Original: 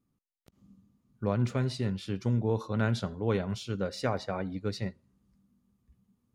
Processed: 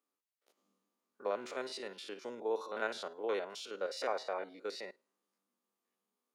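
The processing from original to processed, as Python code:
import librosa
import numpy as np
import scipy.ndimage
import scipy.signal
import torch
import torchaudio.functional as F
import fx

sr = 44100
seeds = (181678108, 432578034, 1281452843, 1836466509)

y = fx.spec_steps(x, sr, hold_ms=50)
y = scipy.signal.sosfilt(scipy.signal.butter(4, 410.0, 'highpass', fs=sr, output='sos'), y)
y = y * 10.0 ** (-1.0 / 20.0)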